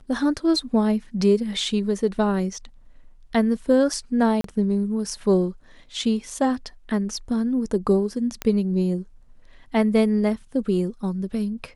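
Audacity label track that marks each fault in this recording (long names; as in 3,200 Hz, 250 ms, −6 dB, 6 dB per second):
4.410000	4.440000	drop-out 33 ms
8.420000	8.420000	click −10 dBFS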